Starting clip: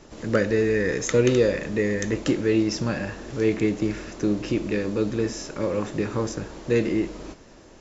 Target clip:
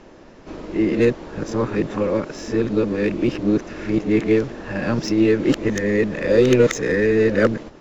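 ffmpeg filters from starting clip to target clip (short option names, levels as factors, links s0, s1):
-filter_complex "[0:a]areverse,acrossover=split=120[s0][s1];[s0]aeval=exprs='max(val(0),0)':c=same[s2];[s2][s1]amix=inputs=2:normalize=0,adynamicsmooth=sensitivity=2:basefreq=4100,volume=1.78"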